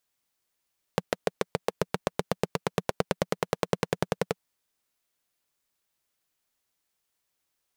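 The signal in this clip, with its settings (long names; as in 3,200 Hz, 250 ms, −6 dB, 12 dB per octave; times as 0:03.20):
pulse-train model of a single-cylinder engine, changing speed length 3.39 s, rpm 800, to 1,300, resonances 180/450 Hz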